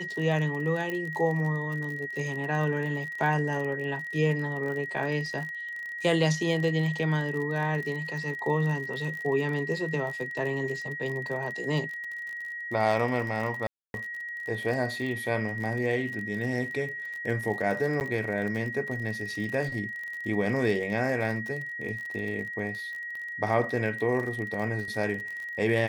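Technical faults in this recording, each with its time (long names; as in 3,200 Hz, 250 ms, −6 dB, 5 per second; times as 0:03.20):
surface crackle 39 per second −34 dBFS
whistle 1,900 Hz −34 dBFS
0:00.90: click −20 dBFS
0:13.67–0:13.94: drop-out 271 ms
0:18.00–0:18.01: drop-out 9.3 ms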